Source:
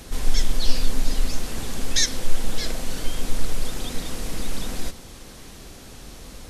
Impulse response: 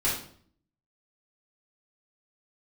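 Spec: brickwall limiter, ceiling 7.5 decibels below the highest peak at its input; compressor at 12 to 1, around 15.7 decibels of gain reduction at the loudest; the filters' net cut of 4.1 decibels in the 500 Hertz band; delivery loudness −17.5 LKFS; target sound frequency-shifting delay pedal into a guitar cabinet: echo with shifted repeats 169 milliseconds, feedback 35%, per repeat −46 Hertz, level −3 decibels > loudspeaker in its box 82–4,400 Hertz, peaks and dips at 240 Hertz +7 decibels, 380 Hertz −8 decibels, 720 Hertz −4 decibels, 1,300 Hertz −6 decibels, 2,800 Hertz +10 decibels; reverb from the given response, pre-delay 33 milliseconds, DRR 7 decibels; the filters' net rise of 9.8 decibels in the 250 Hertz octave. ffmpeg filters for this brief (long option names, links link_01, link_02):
-filter_complex "[0:a]equalizer=frequency=250:width_type=o:gain=7.5,equalizer=frequency=500:width_type=o:gain=-3.5,acompressor=threshold=-23dB:ratio=12,alimiter=limit=-23.5dB:level=0:latency=1,asplit=2[link_01][link_02];[1:a]atrim=start_sample=2205,adelay=33[link_03];[link_02][link_03]afir=irnorm=-1:irlink=0,volume=-17dB[link_04];[link_01][link_04]amix=inputs=2:normalize=0,asplit=6[link_05][link_06][link_07][link_08][link_09][link_10];[link_06]adelay=169,afreqshift=-46,volume=-3dB[link_11];[link_07]adelay=338,afreqshift=-92,volume=-12.1dB[link_12];[link_08]adelay=507,afreqshift=-138,volume=-21.2dB[link_13];[link_09]adelay=676,afreqshift=-184,volume=-30.4dB[link_14];[link_10]adelay=845,afreqshift=-230,volume=-39.5dB[link_15];[link_05][link_11][link_12][link_13][link_14][link_15]amix=inputs=6:normalize=0,highpass=82,equalizer=frequency=240:width_type=q:width=4:gain=7,equalizer=frequency=380:width_type=q:width=4:gain=-8,equalizer=frequency=720:width_type=q:width=4:gain=-4,equalizer=frequency=1300:width_type=q:width=4:gain=-6,equalizer=frequency=2800:width_type=q:width=4:gain=10,lowpass=frequency=4400:width=0.5412,lowpass=frequency=4400:width=1.3066,volume=16.5dB"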